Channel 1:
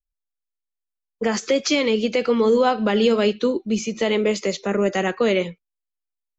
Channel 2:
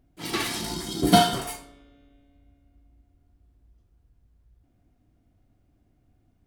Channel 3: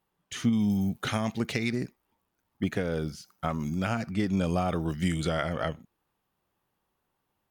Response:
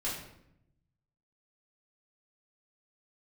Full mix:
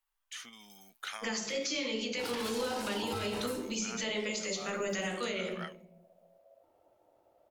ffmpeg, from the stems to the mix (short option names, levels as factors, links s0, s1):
-filter_complex "[0:a]highshelf=f=4900:g=11.5,volume=0.501,asplit=2[s0][s1];[s1]volume=0.251[s2];[1:a]acompressor=threshold=0.0251:ratio=2,aeval=exprs='val(0)*sin(2*PI*610*n/s)':c=same,adelay=2000,volume=0.944[s3];[2:a]volume=0.531[s4];[s0][s4]amix=inputs=2:normalize=0,highpass=1200,acompressor=threshold=0.02:ratio=6,volume=1[s5];[3:a]atrim=start_sample=2205[s6];[s2][s6]afir=irnorm=-1:irlink=0[s7];[s3][s5][s7]amix=inputs=3:normalize=0,alimiter=level_in=1.12:limit=0.0631:level=0:latency=1:release=92,volume=0.891"